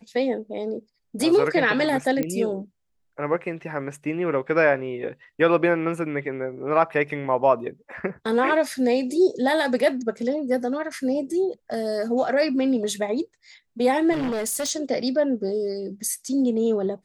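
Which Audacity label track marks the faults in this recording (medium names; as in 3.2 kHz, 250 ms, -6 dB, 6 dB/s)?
2.230000	2.230000	pop -13 dBFS
14.120000	14.710000	clipped -23 dBFS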